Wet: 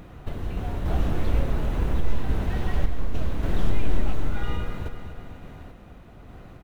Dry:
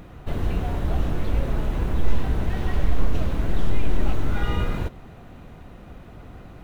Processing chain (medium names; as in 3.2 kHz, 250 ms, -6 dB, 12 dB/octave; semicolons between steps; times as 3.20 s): feedback delay 248 ms, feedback 49%, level -12 dB; random-step tremolo